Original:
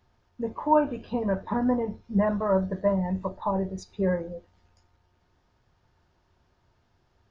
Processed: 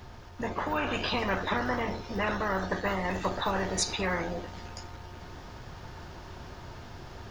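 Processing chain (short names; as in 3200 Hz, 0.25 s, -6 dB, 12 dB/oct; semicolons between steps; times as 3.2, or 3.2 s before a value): vocal rider 0.5 s; spectral compressor 4:1; gain -2 dB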